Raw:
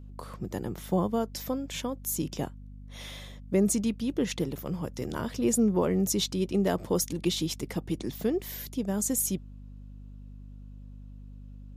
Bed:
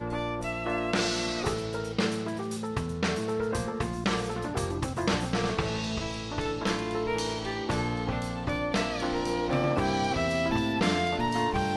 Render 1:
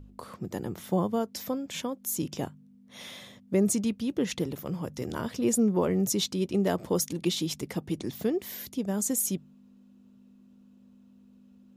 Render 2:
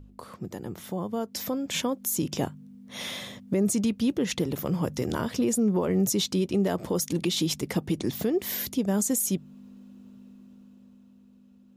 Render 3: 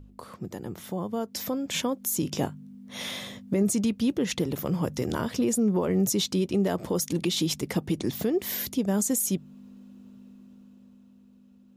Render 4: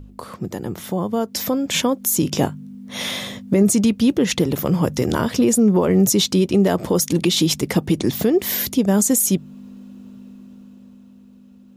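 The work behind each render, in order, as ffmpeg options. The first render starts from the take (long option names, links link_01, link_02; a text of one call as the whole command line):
ffmpeg -i in.wav -af "bandreject=frequency=50:width_type=h:width=4,bandreject=frequency=100:width_type=h:width=4,bandreject=frequency=150:width_type=h:width=4" out.wav
ffmpeg -i in.wav -af "alimiter=level_in=1.5dB:limit=-24dB:level=0:latency=1:release=227,volume=-1.5dB,dynaudnorm=framelen=130:gausssize=21:maxgain=8.5dB" out.wav
ffmpeg -i in.wav -filter_complex "[0:a]asettb=1/sr,asplit=3[link_01][link_02][link_03];[link_01]atrim=end=2.254[link_04];[link_02]atrim=start=2.25:end=3.63,asetpts=PTS-STARTPTS,afade=type=in:duration=0.004:curve=qsin,afade=type=out:start_time=1.376:duration=0.004:curve=qsin,asplit=2[link_05][link_06];[link_06]adelay=20,volume=-11.5dB[link_07];[link_05][link_07]amix=inputs=2:normalize=0,atrim=end_sample=60858[link_08];[link_03]atrim=start=3.626[link_09];[link_04][link_08]acrossfade=duration=0.004:curve1=hsin:curve2=qsin[link_10];[link_10][link_09]acrossfade=duration=0.004:curve1=qsin:curve2=hsin" out.wav
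ffmpeg -i in.wav -af "volume=9dB" out.wav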